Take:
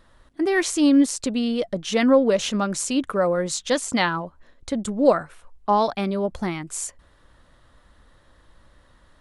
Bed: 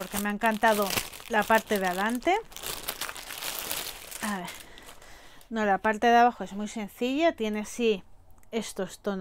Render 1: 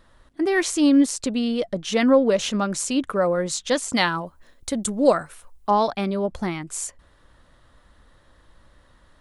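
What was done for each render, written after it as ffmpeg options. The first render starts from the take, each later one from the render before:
-filter_complex "[0:a]asettb=1/sr,asplit=3[a][b][c];[a]atrim=end=3.944[d];[b]atrim=start=3.94:end=5.71,asetpts=PTS-STARTPTS,afade=t=in:d=0.004:c=qsin,afade=t=out:st=1.766:d=0.004:c=qsin,aemphasis=mode=production:type=50fm[e];[c]atrim=start=5.706[f];[d][e]acrossfade=d=0.004:c1=hsin:c2=qsin[g];[g][f]acrossfade=d=0.004:c1=qsin:c2=hsin"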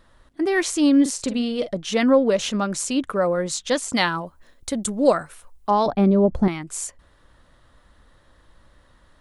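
-filter_complex "[0:a]asettb=1/sr,asplit=3[a][b][c];[a]atrim=end=1.014[d];[b]atrim=start=1.01:end=1.73,asetpts=PTS-STARTPTS,afade=t=in:d=0.004:c=qsin,afade=t=out:st=0.716:d=0.004:c=qsin,asplit=2[e][f];[f]adelay=45,volume=-10.5dB[g];[e][g]amix=inputs=2:normalize=0,atrim=end_sample=31752[h];[c]atrim=start=1.726[i];[d][h]acrossfade=d=0.004:c1=hsin:c2=qsin[j];[j][i]acrossfade=d=0.004:c1=qsin:c2=hsin,asettb=1/sr,asplit=3[k][l][m];[k]atrim=end=5.864[n];[l]atrim=start=5.86:end=6.48,asetpts=PTS-STARTPTS,afade=t=in:d=0.004:c=qsin,afade=t=out:st=0.616:d=0.004:c=qsin,tiltshelf=f=1.1k:g=10[o];[m]atrim=start=6.476[p];[n][o]acrossfade=d=0.004:c1=hsin:c2=qsin[q];[q][p]acrossfade=d=0.004:c1=qsin:c2=hsin"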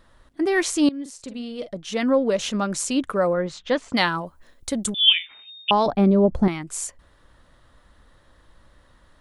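-filter_complex "[0:a]asettb=1/sr,asplit=3[a][b][c];[a]atrim=end=3.334[d];[b]atrim=start=3.33:end=3.97,asetpts=PTS-STARTPTS,afade=t=in:d=0.004:c=qsin,afade=t=out:st=0.636:d=0.004:c=qsin,lowpass=2.8k[e];[c]atrim=start=3.966[f];[d][e]acrossfade=d=0.004:c1=hsin:c2=qsin[g];[g][f]acrossfade=d=0.004:c1=qsin:c2=hsin,asettb=1/sr,asplit=3[h][i][j];[h]atrim=end=4.944[k];[i]atrim=start=4.94:end=5.71,asetpts=PTS-STARTPTS,afade=t=in:d=0.004:c=qsin,afade=t=out:st=0.766:d=0.004:c=qsin,lowpass=f=3.1k:t=q:w=0.5098,lowpass=f=3.1k:t=q:w=0.6013,lowpass=f=3.1k:t=q:w=0.9,lowpass=f=3.1k:t=q:w=2.563,afreqshift=-3700[l];[j]atrim=start=5.706[m];[k][l]acrossfade=d=0.004:c1=hsin:c2=qsin[n];[n][m]acrossfade=d=0.004:c1=qsin:c2=hsin,asplit=2[o][p];[o]atrim=end=0.89,asetpts=PTS-STARTPTS,afade=t=out:st=0.886:d=0.004:c=hsin:silence=0.105925[q];[p]atrim=start=0.89,asetpts=PTS-STARTPTS,afade=t=in:d=1.91:silence=0.105925[r];[q][r]concat=n=2:v=0:a=1"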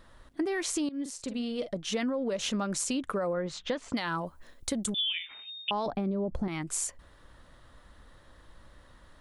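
-af "alimiter=limit=-15.5dB:level=0:latency=1:release=63,acompressor=threshold=-28dB:ratio=6"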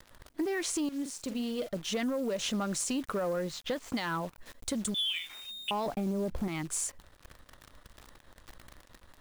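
-af "asoftclip=type=tanh:threshold=-23.5dB,acrusher=bits=9:dc=4:mix=0:aa=0.000001"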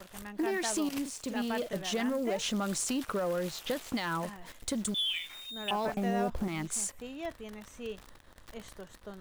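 -filter_complex "[1:a]volume=-15dB[a];[0:a][a]amix=inputs=2:normalize=0"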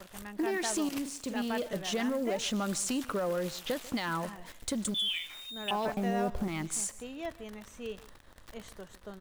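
-af "aecho=1:1:145:0.106"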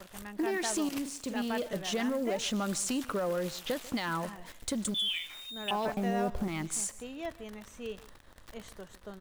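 -af anull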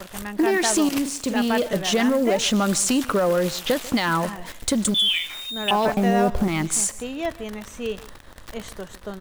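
-af "volume=11.5dB"

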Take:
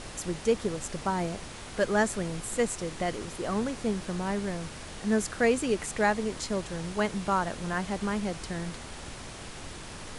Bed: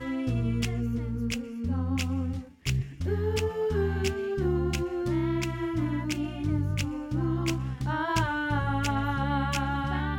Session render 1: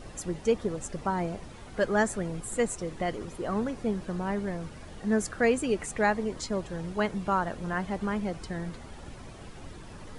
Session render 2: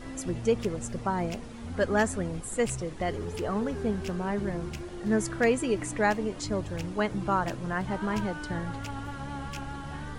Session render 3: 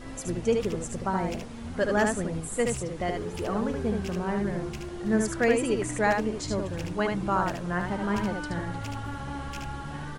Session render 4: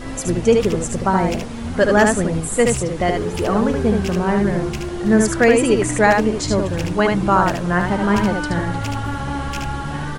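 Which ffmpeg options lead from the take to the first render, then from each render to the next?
-af "afftdn=nr=11:nf=-42"
-filter_complex "[1:a]volume=-10dB[a];[0:a][a]amix=inputs=2:normalize=0"
-af "aecho=1:1:74:0.631"
-af "volume=11dB,alimiter=limit=-3dB:level=0:latency=1"

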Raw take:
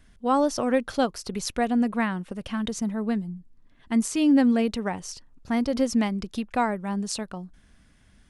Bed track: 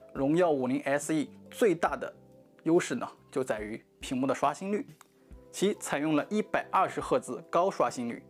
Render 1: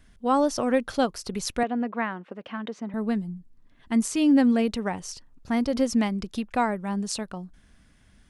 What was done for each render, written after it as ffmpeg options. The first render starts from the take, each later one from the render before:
-filter_complex "[0:a]asettb=1/sr,asplit=3[a][b][c];[a]atrim=end=1.634[d];[b]atrim=start=1.63:end=2.94,asetpts=PTS-STARTPTS,afade=t=in:d=0.004:c=qsin,afade=t=out:st=1.306:d=0.004:c=qsin,highpass=300,lowpass=2.4k[e];[c]atrim=start=2.936[f];[d][e]acrossfade=d=0.004:c1=hsin:c2=qsin[g];[g][f]acrossfade=d=0.004:c1=qsin:c2=hsin"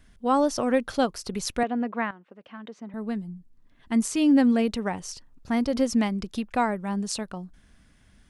-filter_complex "[0:a]asplit=2[a][b];[a]atrim=end=2.11,asetpts=PTS-STARTPTS,afade=t=out:st=2.106:d=0.004:c=hsin:silence=0.223872[c];[b]atrim=start=2.11,asetpts=PTS-STARTPTS,afade=t=in:d=1.94:silence=0.223872[d];[c][d]concat=n=2:v=0:a=1"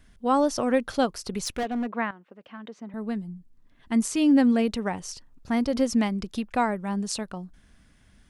-filter_complex "[0:a]asettb=1/sr,asplit=3[a][b][c];[a]atrim=end=1.404[d];[b]atrim=start=1.4:end=1.91,asetpts=PTS-STARTPTS,afade=t=in:d=0.004:c=qsin,afade=t=out:st=0.506:d=0.004:c=qsin,volume=24dB,asoftclip=hard,volume=-24dB[e];[c]atrim=start=1.906[f];[d][e]acrossfade=d=0.004:c1=hsin:c2=qsin[g];[g][f]acrossfade=d=0.004:c1=qsin:c2=hsin"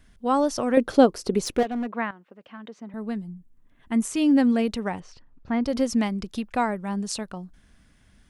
-filter_complex "[0:a]asettb=1/sr,asplit=3[a][b][c];[a]atrim=end=0.774[d];[b]atrim=start=0.77:end=1.63,asetpts=PTS-STARTPTS,afade=t=in:d=0.004:c=qsin,afade=t=out:st=0.856:d=0.004:c=qsin,equalizer=f=370:w=0.79:g=12[e];[c]atrim=start=1.626[f];[d][e]acrossfade=d=0.004:c1=hsin:c2=qsin[g];[g][f]acrossfade=d=0.004:c1=qsin:c2=hsin,asettb=1/sr,asplit=3[h][i][j];[h]atrim=end=3.314[k];[i]atrim=start=3.31:end=4.14,asetpts=PTS-STARTPTS,afade=t=in:d=0.004:c=qsin,afade=t=out:st=0.826:d=0.004:c=qsin,equalizer=f=4.7k:t=o:w=0.62:g=-9.5[l];[j]atrim=start=4.136[m];[k][l]acrossfade=d=0.004:c1=hsin:c2=qsin[n];[n][m]acrossfade=d=0.004:c1=qsin:c2=hsin,asettb=1/sr,asplit=3[o][p][q];[o]atrim=end=5.004[r];[p]atrim=start=5:end=5.65,asetpts=PTS-STARTPTS,afade=t=in:d=0.004:c=qsin,afade=t=out:st=0.646:d=0.004:c=qsin,lowpass=2.6k[s];[q]atrim=start=5.646[t];[r][s]acrossfade=d=0.004:c1=hsin:c2=qsin[u];[u][t]acrossfade=d=0.004:c1=qsin:c2=hsin"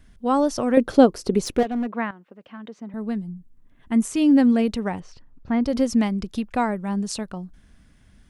-af "lowshelf=f=400:g=4.5"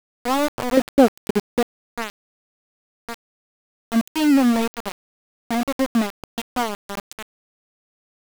-af "aeval=exprs='val(0)*gte(abs(val(0)),0.106)':c=same"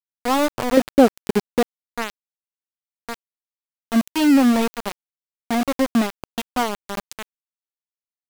-af "volume=1.5dB,alimiter=limit=-2dB:level=0:latency=1"

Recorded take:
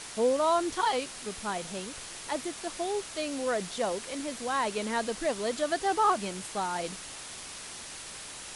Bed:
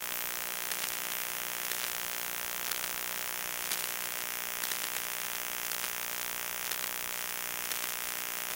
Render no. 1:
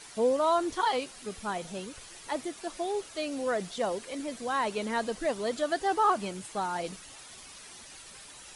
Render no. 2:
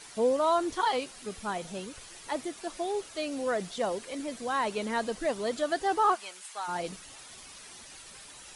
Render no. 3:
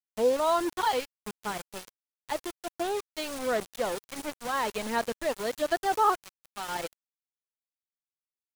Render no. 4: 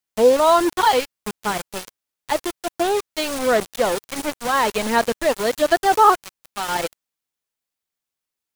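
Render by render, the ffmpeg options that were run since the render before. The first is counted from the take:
-af "afftdn=nr=9:nf=-43"
-filter_complex "[0:a]asplit=3[a][b][c];[a]afade=t=out:st=6.14:d=0.02[d];[b]highpass=1k,afade=t=in:st=6.14:d=0.02,afade=t=out:st=6.67:d=0.02[e];[c]afade=t=in:st=6.67:d=0.02[f];[d][e][f]amix=inputs=3:normalize=0"
-af "aeval=exprs='val(0)*gte(abs(val(0)),0.0224)':c=same,aphaser=in_gain=1:out_gain=1:delay=2.3:decay=0.26:speed=1.4:type=sinusoidal"
-af "volume=10.5dB"

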